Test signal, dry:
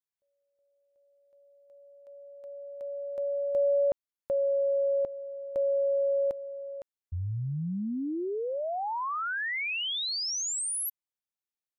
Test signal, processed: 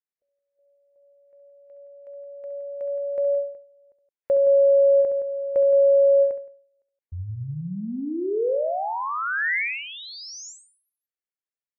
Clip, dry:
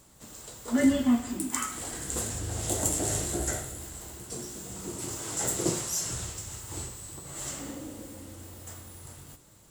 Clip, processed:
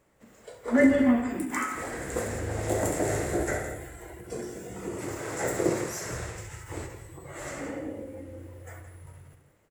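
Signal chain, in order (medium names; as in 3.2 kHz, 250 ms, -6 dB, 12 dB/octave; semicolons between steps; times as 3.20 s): ten-band graphic EQ 500 Hz +9 dB, 2 kHz +10 dB, 4 kHz -7 dB, 8 kHz -6 dB, 16 kHz -6 dB; spectral noise reduction 10 dB; dynamic bell 3 kHz, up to -7 dB, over -57 dBFS, Q 4.3; loudspeakers at several distances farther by 23 m -10 dB, 58 m -11 dB; endings held to a fixed fall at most 110 dB/s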